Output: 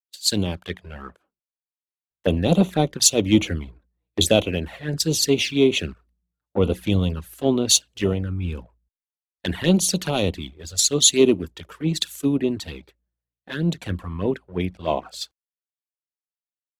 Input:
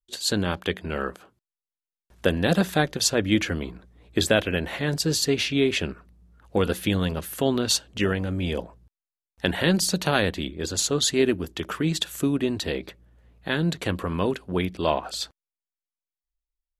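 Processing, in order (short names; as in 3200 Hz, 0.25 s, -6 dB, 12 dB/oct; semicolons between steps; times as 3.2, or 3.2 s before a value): sample leveller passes 1; envelope flanger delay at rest 7.3 ms, full sweep at -16 dBFS; three-band expander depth 100%; gain -1 dB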